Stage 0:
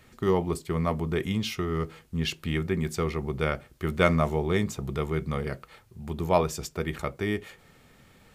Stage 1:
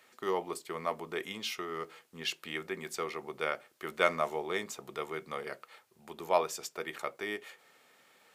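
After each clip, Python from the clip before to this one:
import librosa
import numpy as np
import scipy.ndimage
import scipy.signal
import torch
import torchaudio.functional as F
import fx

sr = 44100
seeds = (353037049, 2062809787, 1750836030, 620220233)

y = scipy.signal.sosfilt(scipy.signal.butter(2, 500.0, 'highpass', fs=sr, output='sos'), x)
y = y * librosa.db_to_amplitude(-3.0)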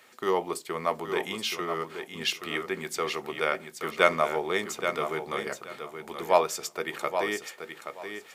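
y = fx.echo_feedback(x, sr, ms=826, feedback_pct=19, wet_db=-8.0)
y = y * librosa.db_to_amplitude(6.0)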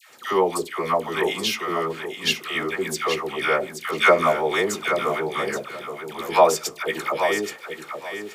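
y = fx.dispersion(x, sr, late='lows', ms=100.0, hz=1000.0)
y = y * librosa.db_to_amplitude(6.5)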